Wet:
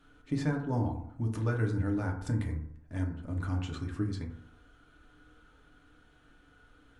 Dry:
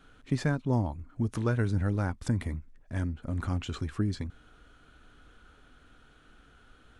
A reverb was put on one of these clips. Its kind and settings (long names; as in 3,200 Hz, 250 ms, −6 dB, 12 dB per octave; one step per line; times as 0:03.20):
feedback delay network reverb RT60 0.72 s, low-frequency decay 1×, high-frequency decay 0.35×, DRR 0.5 dB
level −6 dB